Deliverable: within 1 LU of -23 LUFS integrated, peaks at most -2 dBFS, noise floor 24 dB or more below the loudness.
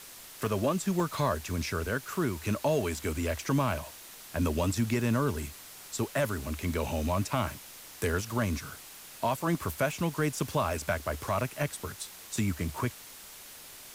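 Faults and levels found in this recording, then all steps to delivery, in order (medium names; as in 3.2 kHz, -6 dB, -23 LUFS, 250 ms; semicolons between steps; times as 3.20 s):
dropouts 5; longest dropout 1.5 ms; noise floor -48 dBFS; noise floor target -56 dBFS; loudness -31.5 LUFS; peak level -17.5 dBFS; loudness target -23.0 LUFS
-> interpolate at 0.46/1.00/4.64/8.30/11.41 s, 1.5 ms; noise print and reduce 8 dB; trim +8.5 dB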